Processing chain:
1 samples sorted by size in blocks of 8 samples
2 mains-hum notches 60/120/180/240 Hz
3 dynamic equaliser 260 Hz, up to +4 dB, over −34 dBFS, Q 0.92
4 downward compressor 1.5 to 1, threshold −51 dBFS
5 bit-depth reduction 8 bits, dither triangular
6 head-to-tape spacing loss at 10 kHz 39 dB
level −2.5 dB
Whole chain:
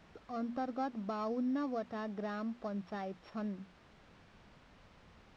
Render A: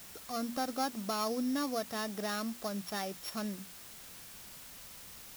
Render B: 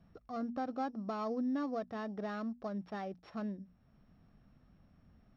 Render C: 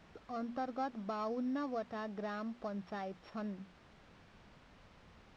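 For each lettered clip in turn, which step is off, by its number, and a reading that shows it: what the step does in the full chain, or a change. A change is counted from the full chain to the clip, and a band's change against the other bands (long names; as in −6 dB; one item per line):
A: 6, 4 kHz band +14.5 dB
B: 5, distortion level −12 dB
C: 3, 250 Hz band −3.0 dB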